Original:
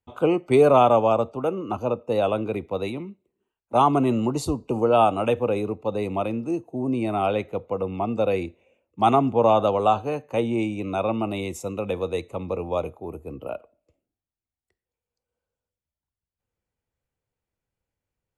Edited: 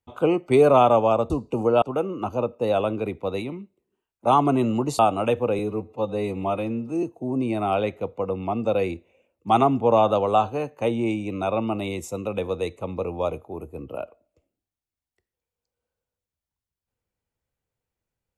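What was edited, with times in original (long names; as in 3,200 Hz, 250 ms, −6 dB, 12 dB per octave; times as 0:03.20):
0:04.47–0:04.99: move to 0:01.30
0:05.59–0:06.55: time-stretch 1.5×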